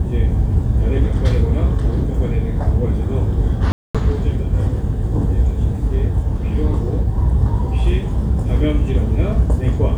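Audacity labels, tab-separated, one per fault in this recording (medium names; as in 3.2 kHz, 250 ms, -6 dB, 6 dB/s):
3.720000	3.950000	dropout 226 ms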